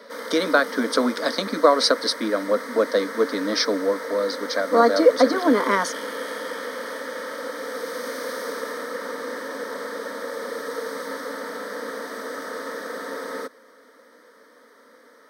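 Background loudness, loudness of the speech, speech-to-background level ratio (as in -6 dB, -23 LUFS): -32.0 LUFS, -21.5 LUFS, 10.5 dB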